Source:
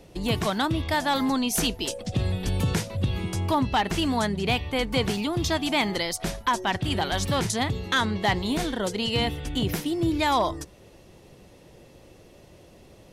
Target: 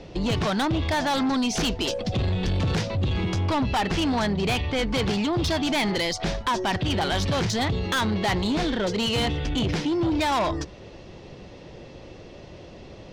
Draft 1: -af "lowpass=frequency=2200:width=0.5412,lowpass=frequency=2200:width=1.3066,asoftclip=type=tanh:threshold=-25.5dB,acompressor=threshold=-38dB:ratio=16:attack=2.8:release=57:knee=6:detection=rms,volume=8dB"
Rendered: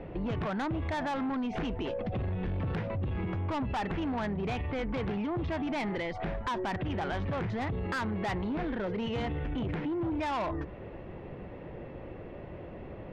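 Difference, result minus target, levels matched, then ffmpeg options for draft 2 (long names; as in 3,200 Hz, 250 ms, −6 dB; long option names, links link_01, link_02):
4,000 Hz band −9.5 dB; downward compressor: peak gain reduction +9 dB
-af "lowpass=frequency=5500:width=0.5412,lowpass=frequency=5500:width=1.3066,asoftclip=type=tanh:threshold=-25.5dB,acompressor=threshold=-27.5dB:ratio=16:attack=2.8:release=57:knee=6:detection=rms,volume=8dB"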